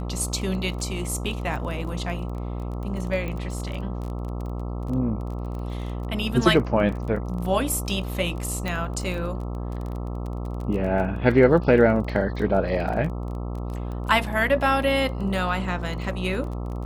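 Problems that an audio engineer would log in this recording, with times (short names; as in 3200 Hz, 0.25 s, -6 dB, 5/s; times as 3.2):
buzz 60 Hz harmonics 22 -30 dBFS
crackle 21/s -31 dBFS
3.28 pop -20 dBFS
8.68 pop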